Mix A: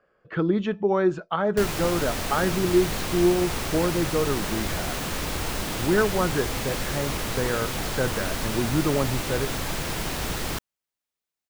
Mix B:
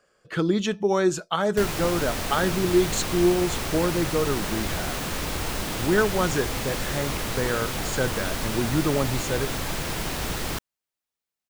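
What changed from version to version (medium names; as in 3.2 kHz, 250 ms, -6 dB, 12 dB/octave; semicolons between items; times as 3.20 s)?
speech: remove low-pass 2 kHz 12 dB/octave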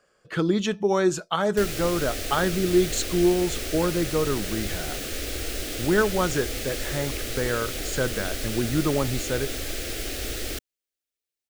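background: add static phaser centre 400 Hz, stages 4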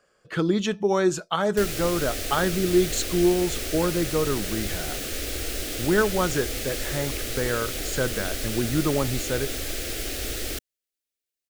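background: add peaking EQ 15 kHz +2.5 dB 1.5 oct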